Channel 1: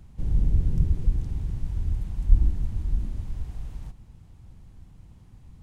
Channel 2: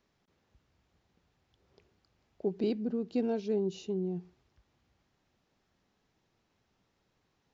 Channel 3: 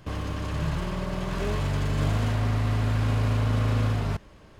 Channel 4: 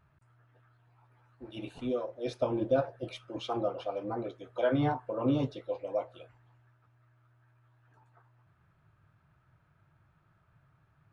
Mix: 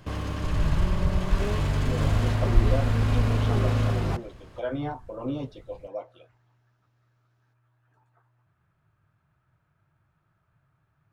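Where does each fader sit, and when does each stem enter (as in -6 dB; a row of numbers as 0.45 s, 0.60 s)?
-3.0 dB, -5.0 dB, 0.0 dB, -3.0 dB; 0.25 s, 0.00 s, 0.00 s, 0.00 s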